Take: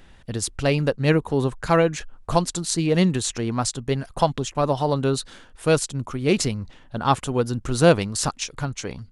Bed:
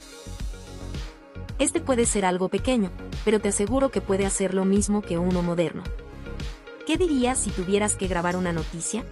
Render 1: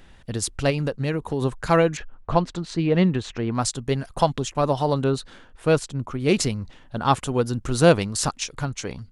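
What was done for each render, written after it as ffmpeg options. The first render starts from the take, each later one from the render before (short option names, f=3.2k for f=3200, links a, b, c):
-filter_complex "[0:a]asettb=1/sr,asplit=3[a][b][c];[a]atrim=end=0.704[d];[b]atrim=start=0.7:end=1.42,asetpts=PTS-STARTPTS,afade=t=in:d=0.004:c=qsin,afade=t=out:st=0.716:d=0.004:c=qsin,acompressor=threshold=-20dB:ratio=5:attack=3.2:release=140:knee=1:detection=peak[e];[c]atrim=start=1.416[f];[d][e]acrossfade=d=0.004:c1=hsin:c2=qsin[g];[g][f]acrossfade=d=0.004:c1=qsin:c2=hsin,asettb=1/sr,asplit=3[h][i][j];[h]atrim=end=1.974[k];[i]atrim=start=1.97:end=3.55,asetpts=PTS-STARTPTS,afade=t=in:d=0.004:c=qsin,afade=t=out:st=1.576:d=0.004:c=qsin,lowpass=2.8k[l];[j]atrim=start=3.546[m];[k][l]acrossfade=d=0.004:c1=hsin:c2=qsin[n];[n][m]acrossfade=d=0.004:c1=qsin:c2=hsin,asettb=1/sr,asplit=3[o][p][q];[o]atrim=end=5.044[r];[p]atrim=start=5.04:end=6.2,asetpts=PTS-STARTPTS,afade=t=in:d=0.004:c=qsin,afade=t=out:st=1.156:d=0.004:c=qsin,highshelf=f=4.5k:g=-11[s];[q]atrim=start=6.196[t];[r][s]acrossfade=d=0.004:c1=hsin:c2=qsin[u];[u][t]acrossfade=d=0.004:c1=qsin:c2=hsin"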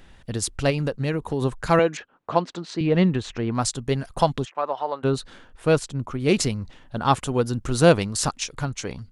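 -filter_complex "[0:a]asettb=1/sr,asplit=3[a][b][c];[a]atrim=end=1.794[d];[b]atrim=start=1.79:end=2.81,asetpts=PTS-STARTPTS,afade=t=in:d=0.004:c=qsin,afade=t=out:st=1.016:d=0.004:c=qsin,highpass=230,lowpass=7.2k[e];[c]atrim=start=2.806[f];[d][e]acrossfade=d=0.004:c1=hsin:c2=qsin[g];[g][f]acrossfade=d=0.004:c1=qsin:c2=hsin,asplit=3[h][i][j];[h]afade=t=out:st=4.44:d=0.02[k];[i]highpass=690,lowpass=2.1k,afade=t=in:st=4.44:d=0.02,afade=t=out:st=5.03:d=0.02[l];[j]afade=t=in:st=5.03:d=0.02[m];[k][l][m]amix=inputs=3:normalize=0"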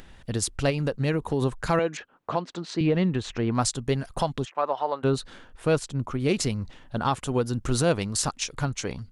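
-af "alimiter=limit=-13dB:level=0:latency=1:release=277,acompressor=mode=upward:threshold=-45dB:ratio=2.5"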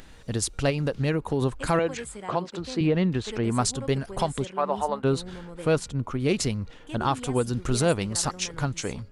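-filter_complex "[1:a]volume=-16.5dB[a];[0:a][a]amix=inputs=2:normalize=0"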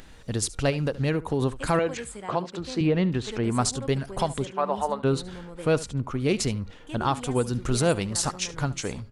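-af "aecho=1:1:73:0.119"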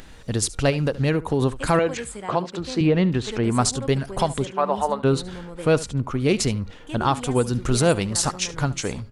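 -af "volume=4dB"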